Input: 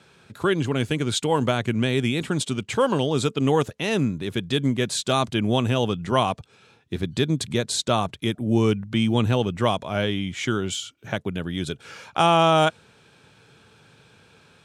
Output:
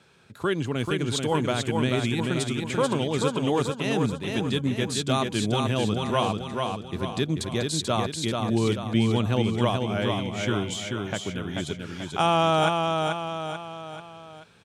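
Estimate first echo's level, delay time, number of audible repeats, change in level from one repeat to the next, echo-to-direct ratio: -4.0 dB, 0.437 s, 4, -6.5 dB, -3.0 dB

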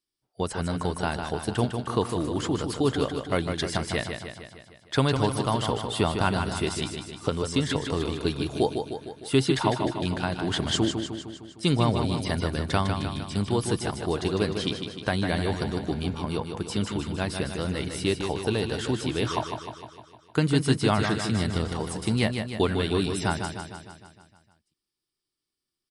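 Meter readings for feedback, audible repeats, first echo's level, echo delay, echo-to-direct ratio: 59%, 7, -6.5 dB, 0.153 s, -4.5 dB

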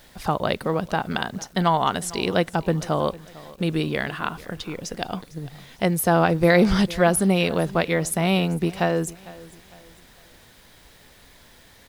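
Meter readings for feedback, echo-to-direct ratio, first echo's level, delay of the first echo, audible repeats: 37%, -19.5 dB, -20.0 dB, 0.452 s, 2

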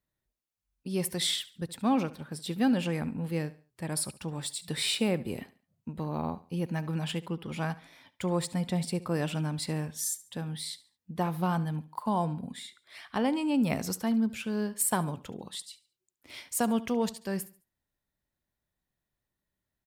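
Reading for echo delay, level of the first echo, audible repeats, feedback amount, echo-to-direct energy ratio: 71 ms, -18.0 dB, 2, 33%, -17.5 dB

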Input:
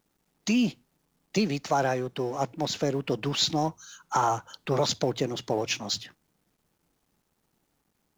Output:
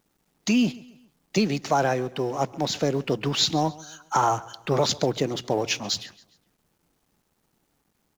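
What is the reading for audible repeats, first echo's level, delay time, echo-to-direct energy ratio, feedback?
2, -21.0 dB, 0.137 s, -20.0 dB, 41%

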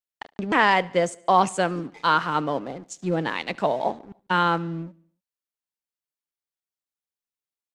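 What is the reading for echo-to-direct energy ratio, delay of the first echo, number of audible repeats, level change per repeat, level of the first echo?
-22.5 dB, 73 ms, 3, -5.0 dB, -24.0 dB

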